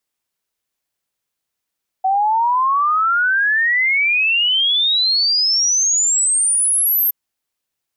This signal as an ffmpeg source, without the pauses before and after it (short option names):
-f lavfi -i "aevalsrc='0.224*clip(min(t,5.07-t)/0.01,0,1)*sin(2*PI*750*5.07/log(13000/750)*(exp(log(13000/750)*t/5.07)-1))':d=5.07:s=44100"